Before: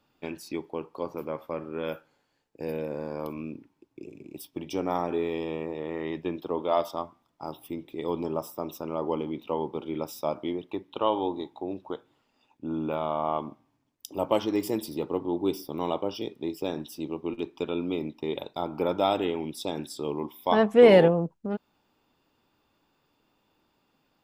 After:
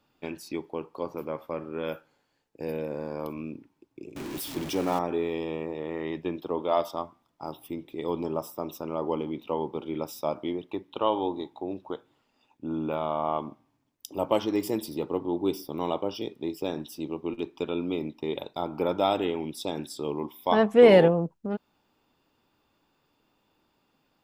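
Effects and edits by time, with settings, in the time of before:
0:04.16–0:04.99: converter with a step at zero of −32.5 dBFS

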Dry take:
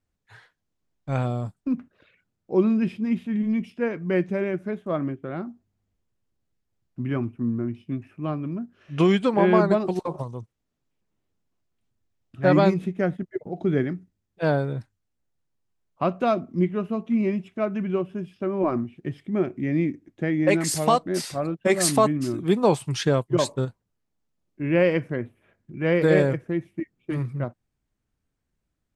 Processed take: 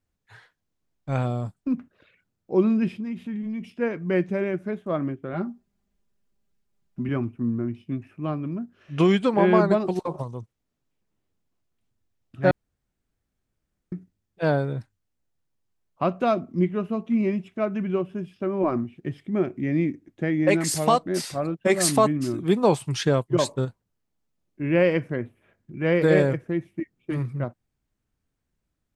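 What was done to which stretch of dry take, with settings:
0:03.00–0:03.70: downward compressor, threshold −28 dBFS
0:05.33–0:07.09: comb filter 5 ms, depth 80%
0:12.51–0:13.92: fill with room tone

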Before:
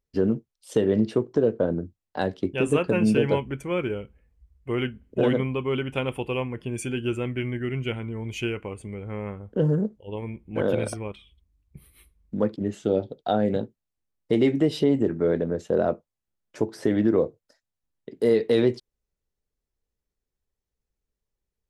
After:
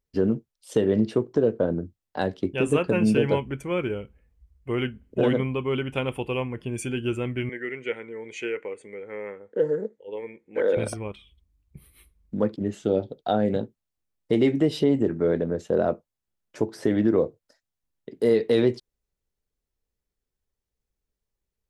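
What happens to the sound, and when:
0:07.49–0:10.77: loudspeaker in its box 420–8,000 Hz, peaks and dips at 470 Hz +8 dB, 700 Hz −7 dB, 1,100 Hz −7 dB, 1,900 Hz +9 dB, 2,900 Hz −8 dB, 5,200 Hz −6 dB

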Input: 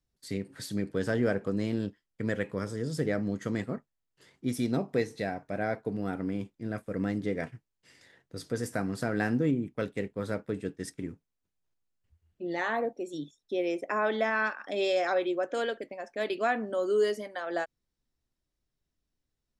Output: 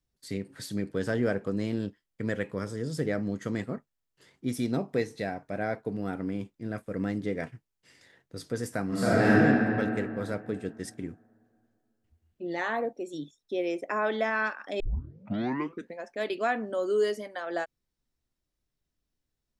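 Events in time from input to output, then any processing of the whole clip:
0:08.87–0:09.34: thrown reverb, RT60 2.6 s, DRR −9.5 dB
0:14.80: tape start 1.26 s

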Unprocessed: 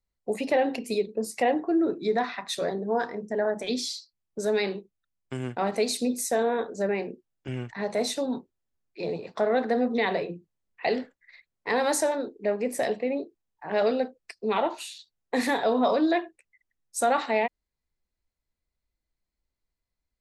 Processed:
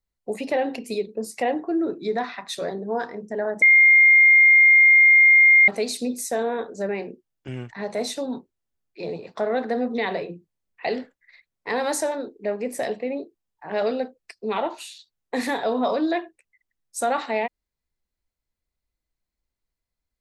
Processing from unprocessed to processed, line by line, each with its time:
0:03.62–0:05.68: beep over 2,120 Hz −10 dBFS

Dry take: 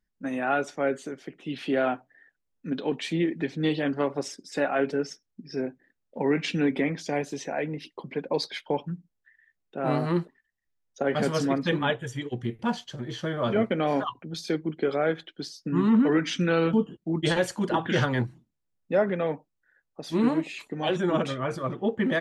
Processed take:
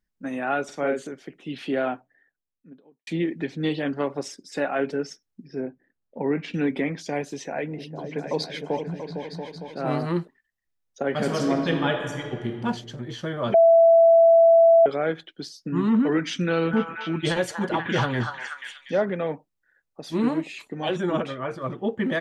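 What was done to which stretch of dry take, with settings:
0:00.64–0:01.07: double-tracking delay 48 ms −3.5 dB
0:01.65–0:03.07: fade out and dull
0:05.47–0:06.54: low-pass filter 1,400 Hz 6 dB per octave
0:07.27–0:10.03: echo whose low-pass opens from repeat to repeat 228 ms, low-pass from 200 Hz, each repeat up 2 octaves, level −3 dB
0:11.15–0:12.58: thrown reverb, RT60 1.8 s, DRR 3.5 dB
0:13.54–0:14.86: beep over 665 Hz −11 dBFS
0:16.28–0:19.05: echo through a band-pass that steps 242 ms, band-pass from 1,100 Hz, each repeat 0.7 octaves, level −1 dB
0:21.20–0:21.62: bass and treble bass −5 dB, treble −10 dB

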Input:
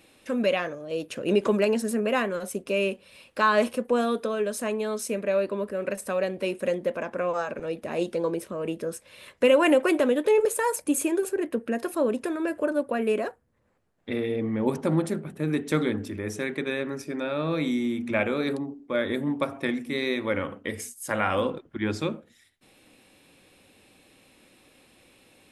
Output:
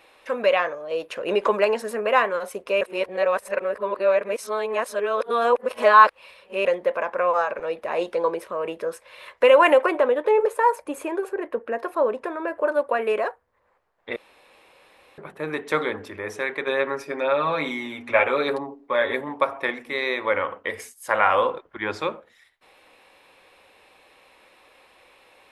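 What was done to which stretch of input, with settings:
0:02.81–0:06.65: reverse
0:09.86–0:12.66: high-shelf EQ 2,100 Hz −9.5 dB
0:14.16–0:15.18: fill with room tone
0:16.66–0:19.21: comb filter 7.3 ms, depth 73%
whole clip: octave-band graphic EQ 125/250/500/1,000/2,000/4,000/8,000 Hz −8/−8/+6/+12/+6/+3/−4 dB; level −2.5 dB

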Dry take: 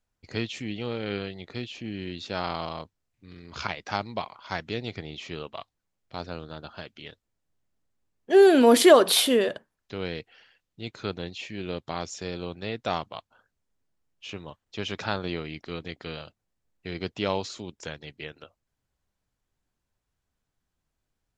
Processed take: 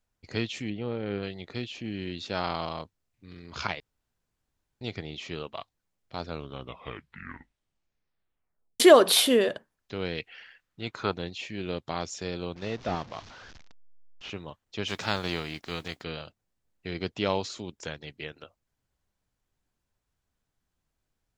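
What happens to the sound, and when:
0:00.70–0:01.23: low-pass filter 1,100 Hz 6 dB per octave
0:03.80–0:04.81: fill with room tone
0:06.20: tape stop 2.60 s
0:10.17–0:11.13: parametric band 2,700 Hz → 930 Hz +11 dB 1.2 octaves
0:12.56–0:14.30: linear delta modulator 32 kbit/s, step −42 dBFS
0:14.87–0:16.02: spectral envelope flattened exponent 0.6

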